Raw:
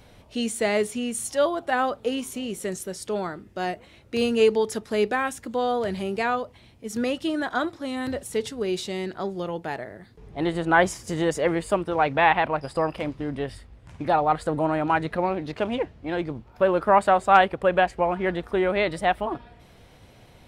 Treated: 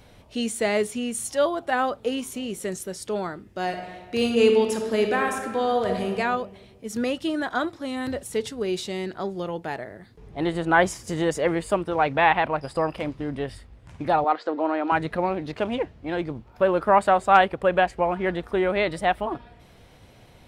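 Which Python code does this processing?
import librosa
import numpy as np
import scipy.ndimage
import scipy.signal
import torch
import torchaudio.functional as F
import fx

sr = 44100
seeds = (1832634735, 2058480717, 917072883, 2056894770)

y = fx.reverb_throw(x, sr, start_s=3.62, length_s=2.47, rt60_s=1.5, drr_db=3.0)
y = fx.ellip_bandpass(y, sr, low_hz=290.0, high_hz=5200.0, order=3, stop_db=40, at=(14.24, 14.92))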